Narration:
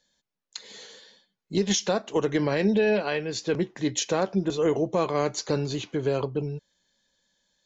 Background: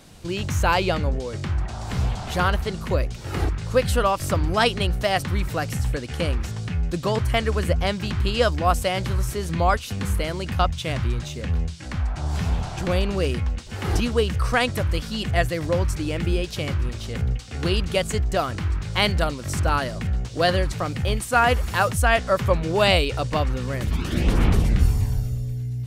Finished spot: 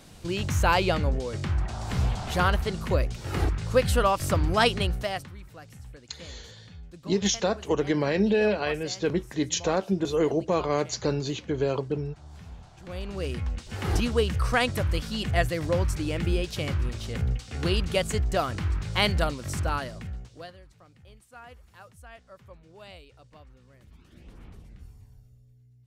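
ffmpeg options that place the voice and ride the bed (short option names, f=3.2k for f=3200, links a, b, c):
-filter_complex "[0:a]adelay=5550,volume=-0.5dB[a];[1:a]volume=15.5dB,afade=t=out:st=4.74:d=0.59:silence=0.11885,afade=t=in:st=12.81:d=0.93:silence=0.133352,afade=t=out:st=19.25:d=1.27:silence=0.0501187[b];[a][b]amix=inputs=2:normalize=0"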